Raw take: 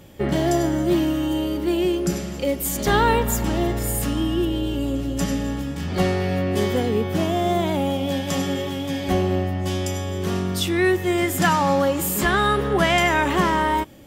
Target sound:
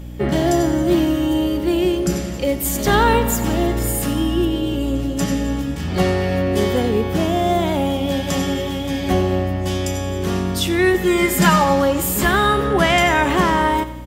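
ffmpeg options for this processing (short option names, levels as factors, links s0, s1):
-filter_complex "[0:a]aeval=exprs='val(0)+0.02*(sin(2*PI*60*n/s)+sin(2*PI*2*60*n/s)/2+sin(2*PI*3*60*n/s)/3+sin(2*PI*4*60*n/s)/4+sin(2*PI*5*60*n/s)/5)':c=same,asettb=1/sr,asplit=3[s0][s1][s2];[s0]atrim=end=10.944[s3];[s1]atrim=start=10.94:end=11.64,asetpts=PTS-STARTPTS,afade=t=in:d=0.004:c=qsin,afade=t=out:st=0.696:d=0.004:c=qsin,aecho=1:1:4.9:0.87,atrim=end_sample=30870[s4];[s2]atrim=start=11.636[s5];[s3][s4]acrossfade=d=0.004:c1=hsin:c2=qsin[s6];[s6][s5]acrossfade=d=0.004:c1=qsin:c2=hsin,aecho=1:1:90|180|270|360|450:0.178|0.0978|0.0538|0.0296|0.0163,volume=1.41"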